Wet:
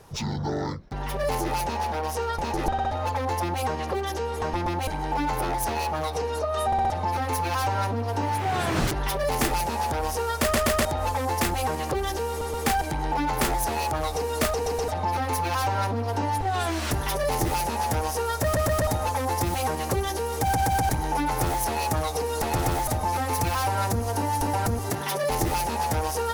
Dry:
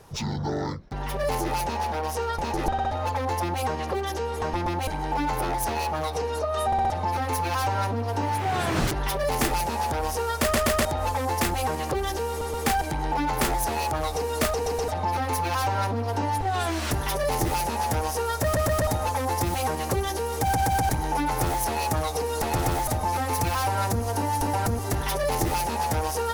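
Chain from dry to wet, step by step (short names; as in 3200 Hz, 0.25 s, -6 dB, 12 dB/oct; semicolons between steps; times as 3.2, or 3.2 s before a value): 24.9–25.3 HPF 120 Hz 24 dB/oct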